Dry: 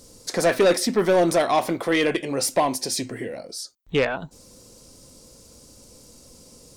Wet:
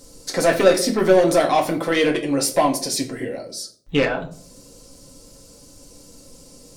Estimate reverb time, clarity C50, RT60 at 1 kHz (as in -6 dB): 0.55 s, 14.0 dB, 0.45 s